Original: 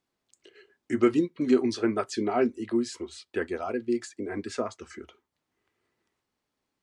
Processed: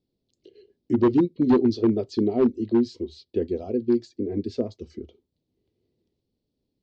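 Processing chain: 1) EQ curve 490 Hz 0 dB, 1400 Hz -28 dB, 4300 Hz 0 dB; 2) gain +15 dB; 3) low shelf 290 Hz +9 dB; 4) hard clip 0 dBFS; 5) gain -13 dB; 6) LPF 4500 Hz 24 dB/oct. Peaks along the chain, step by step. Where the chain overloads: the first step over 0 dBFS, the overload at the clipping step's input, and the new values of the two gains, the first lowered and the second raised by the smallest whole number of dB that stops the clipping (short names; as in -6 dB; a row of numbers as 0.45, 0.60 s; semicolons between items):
-10.5, +4.5, +8.5, 0.0, -13.0, -12.5 dBFS; step 2, 8.5 dB; step 2 +6 dB, step 5 -4 dB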